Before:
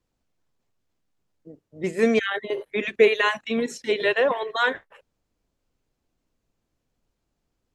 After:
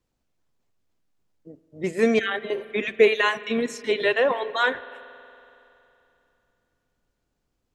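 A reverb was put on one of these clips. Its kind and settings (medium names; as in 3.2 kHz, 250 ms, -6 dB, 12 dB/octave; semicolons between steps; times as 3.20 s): spring tank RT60 3 s, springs 46 ms, chirp 20 ms, DRR 16 dB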